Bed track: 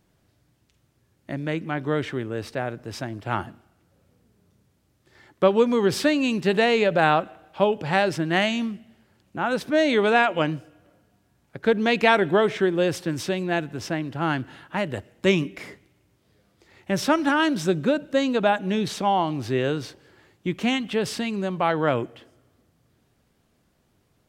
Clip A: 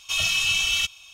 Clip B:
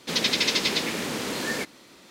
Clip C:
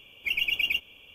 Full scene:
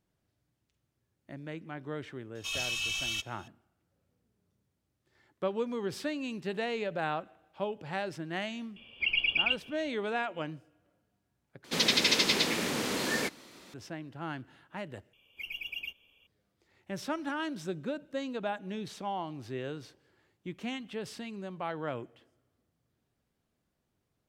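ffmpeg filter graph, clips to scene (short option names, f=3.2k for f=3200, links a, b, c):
-filter_complex "[3:a]asplit=2[a][b];[0:a]volume=-14dB[c];[a]aresample=11025,aresample=44100[d];[c]asplit=3[e][f][g];[e]atrim=end=11.644[h];[2:a]atrim=end=2.1,asetpts=PTS-STARTPTS,volume=-2dB[i];[f]atrim=start=13.736:end=15.134[j];[b]atrim=end=1.14,asetpts=PTS-STARTPTS,volume=-13dB[k];[g]atrim=start=16.266[l];[1:a]atrim=end=1.13,asetpts=PTS-STARTPTS,volume=-11dB,afade=t=in:d=0.004:c=hsin,afade=t=out:st=1.126:d=0.004:c=hsin,adelay=2350[m];[d]atrim=end=1.14,asetpts=PTS-STARTPTS,volume=-1.5dB,afade=t=in:d=0.004:c=hsin,afade=t=out:st=1.136:d=0.004:c=hsin,adelay=8760[n];[h][i]acrossfade=d=0.004:c1=hsin:c2=hsin[o];[o][j]acrossfade=d=0.004:c1=hsin:c2=hsin[p];[p][k]acrossfade=d=0.004:c1=hsin:c2=hsin[q];[q][l]acrossfade=d=0.004:c1=hsin:c2=hsin[r];[r][m][n]amix=inputs=3:normalize=0"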